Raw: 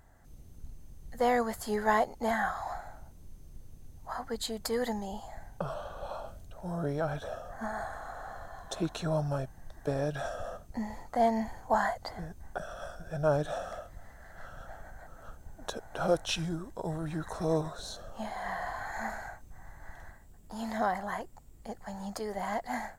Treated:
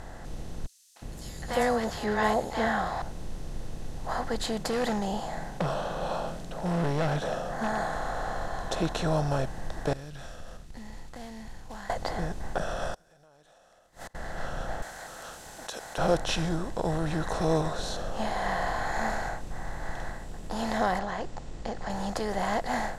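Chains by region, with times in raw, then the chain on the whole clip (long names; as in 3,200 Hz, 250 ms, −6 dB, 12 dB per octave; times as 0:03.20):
0:00.66–0:03.02: high-pass filter 50 Hz + three-band delay without the direct sound highs, mids, lows 300/360 ms, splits 890/5,500 Hz
0:04.46–0:07.96: low shelf with overshoot 120 Hz −8.5 dB, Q 3 + hard clipping −28 dBFS
0:09.93–0:11.90: log-companded quantiser 6 bits + guitar amp tone stack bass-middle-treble 6-0-2 + downward compressor 2.5 to 1, threshold −53 dBFS
0:12.94–0:14.15: RIAA equalisation recording + downward compressor 3 to 1, threshold −43 dBFS + gate with flip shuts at −42 dBFS, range −41 dB
0:14.82–0:15.98: first difference + envelope flattener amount 50%
0:20.99–0:21.90: low-pass filter 6,800 Hz 24 dB per octave + downward compressor, threshold −38 dBFS
whole clip: compressor on every frequency bin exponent 0.6; low-pass filter 9,800 Hz 12 dB per octave; low-shelf EQ 72 Hz +11 dB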